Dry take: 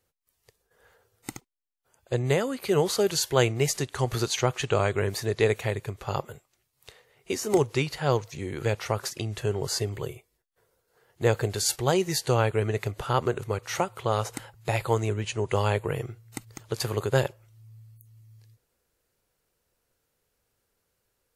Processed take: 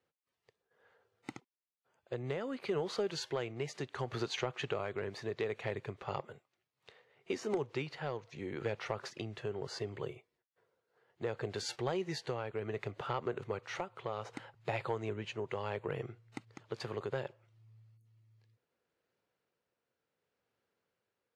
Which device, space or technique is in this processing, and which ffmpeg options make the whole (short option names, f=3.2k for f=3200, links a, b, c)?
AM radio: -af "highpass=150,lowpass=3.4k,acompressor=threshold=-25dB:ratio=6,asoftclip=type=tanh:threshold=-17dB,tremolo=f=0.68:d=0.31,volume=-4.5dB"